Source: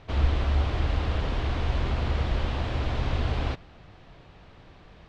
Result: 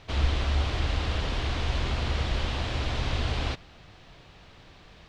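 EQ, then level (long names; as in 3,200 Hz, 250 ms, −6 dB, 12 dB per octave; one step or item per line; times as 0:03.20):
high-shelf EQ 2,600 Hz +11.5 dB
−2.0 dB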